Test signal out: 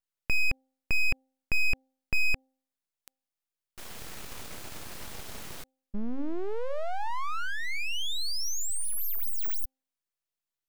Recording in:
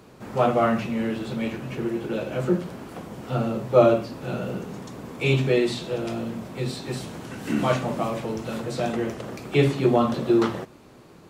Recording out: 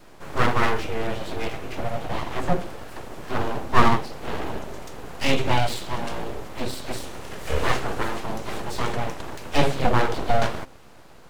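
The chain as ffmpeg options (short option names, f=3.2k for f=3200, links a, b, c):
-af "adynamicequalizer=threshold=0.00631:dfrequency=890:dqfactor=4.3:tfrequency=890:tqfactor=4.3:attack=5:release=100:ratio=0.375:range=1.5:mode=cutabove:tftype=bell,aeval=exprs='abs(val(0))':c=same,bandreject=f=262.7:t=h:w=4,bandreject=f=525.4:t=h:w=4,bandreject=f=788.1:t=h:w=4,volume=3dB"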